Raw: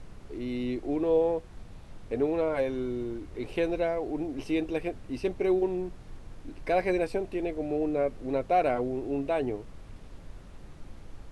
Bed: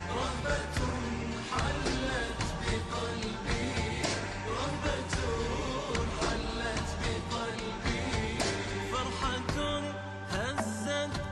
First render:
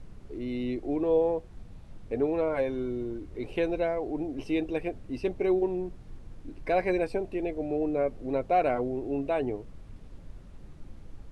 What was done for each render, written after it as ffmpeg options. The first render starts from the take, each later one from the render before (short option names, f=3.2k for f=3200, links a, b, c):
-af "afftdn=nr=6:nf=-48"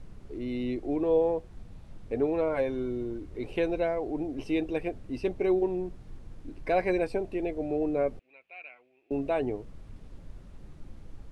-filter_complex "[0:a]asettb=1/sr,asplit=3[a][b][c];[a]atrim=end=8.194[d];[b]atrim=start=8.19:end=9.11,asetpts=PTS-STARTPTS,afade=t=in:d=0.004:c=qsin,afade=t=out:st=0.916:d=0.004:c=qsin,bandpass=f=2.5k:t=q:w=9[e];[c]atrim=start=9.106[f];[d][e]acrossfade=d=0.004:c1=hsin:c2=qsin[g];[g][f]acrossfade=d=0.004:c1=qsin:c2=hsin"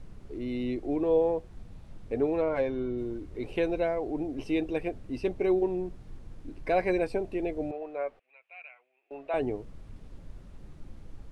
-filter_complex "[0:a]asettb=1/sr,asplit=3[a][b][c];[a]atrim=end=2.424[d];[b]atrim=start=2.42:end=2.98,asetpts=PTS-STARTPTS,afade=t=in:d=0.004:c=qsin,afade=t=out:st=0.556:d=0.004:c=qsin,adynamicsmooth=sensitivity=6.5:basefreq=5k[e];[c]atrim=start=2.976[f];[d][e]acrossfade=d=0.004:c1=hsin:c2=qsin[g];[g][f]acrossfade=d=0.004:c1=qsin:c2=hsin,asettb=1/sr,asplit=3[h][i][j];[h]atrim=end=7.714[k];[i]atrim=start=7.71:end=9.34,asetpts=PTS-STARTPTS,afade=t=in:d=0.004:c=qsin,afade=t=out:st=1.626:d=0.004:c=qsin,acrossover=split=550 3400:gain=0.0708 1 0.178[l][m][n];[l][m][n]amix=inputs=3:normalize=0[o];[j]atrim=start=9.336[p];[k][o]acrossfade=d=0.004:c1=hsin:c2=qsin[q];[q][p]acrossfade=d=0.004:c1=qsin:c2=hsin"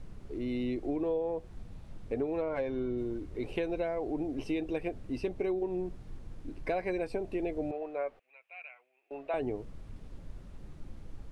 -af "acompressor=threshold=-29dB:ratio=6"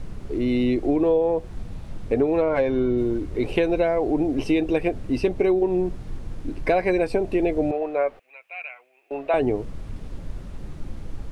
-af "volume=12dB"